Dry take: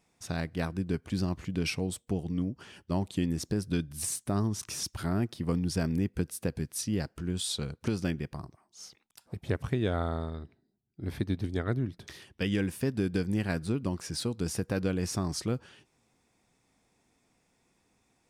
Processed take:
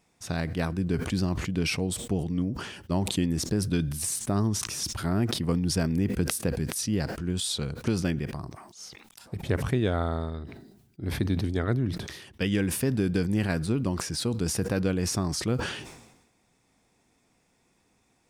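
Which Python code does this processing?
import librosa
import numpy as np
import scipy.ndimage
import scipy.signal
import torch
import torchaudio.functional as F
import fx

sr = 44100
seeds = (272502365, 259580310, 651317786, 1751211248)

y = fx.sustainer(x, sr, db_per_s=56.0)
y = y * librosa.db_to_amplitude(3.0)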